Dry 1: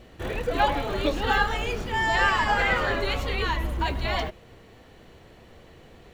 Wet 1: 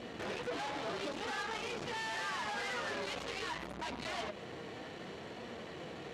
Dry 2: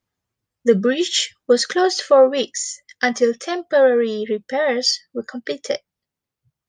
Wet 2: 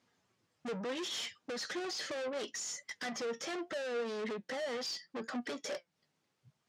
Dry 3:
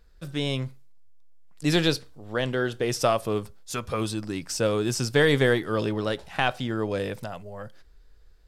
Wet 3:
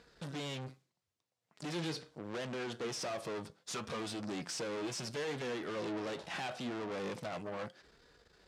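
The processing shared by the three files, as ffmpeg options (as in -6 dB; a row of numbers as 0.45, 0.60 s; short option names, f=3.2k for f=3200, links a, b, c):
-af "acompressor=threshold=-32dB:ratio=4,aeval=exprs='(tanh(178*val(0)+0.3)-tanh(0.3))/178':c=same,flanger=delay=4.1:depth=2.4:regen=76:speed=0.74:shape=sinusoidal,highpass=160,lowpass=7.2k,volume=12.5dB"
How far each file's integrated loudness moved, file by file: -15.0, -20.0, -14.0 LU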